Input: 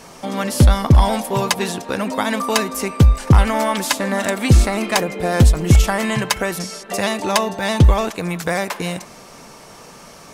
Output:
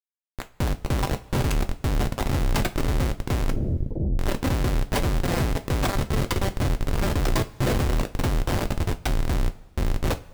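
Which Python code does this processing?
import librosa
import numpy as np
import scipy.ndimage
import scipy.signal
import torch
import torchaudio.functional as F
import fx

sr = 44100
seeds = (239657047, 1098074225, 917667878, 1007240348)

y = fx.echo_pitch(x, sr, ms=636, semitones=-5, count=3, db_per_echo=-3.0)
y = fx.dereverb_blind(y, sr, rt60_s=0.7)
y = fx.schmitt(y, sr, flips_db=-14.0)
y = fx.gaussian_blur(y, sr, sigma=19.0, at=(3.5, 4.19))
y = fx.rev_double_slope(y, sr, seeds[0], early_s=0.21, late_s=1.5, knee_db=-21, drr_db=7.0)
y = y * librosa.db_to_amplitude(-7.5)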